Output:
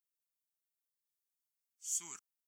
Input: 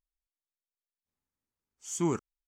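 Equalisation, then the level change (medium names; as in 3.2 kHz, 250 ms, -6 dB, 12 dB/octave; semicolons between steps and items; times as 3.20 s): differentiator; peaking EQ 480 Hz -12.5 dB 1.6 oct; +1.5 dB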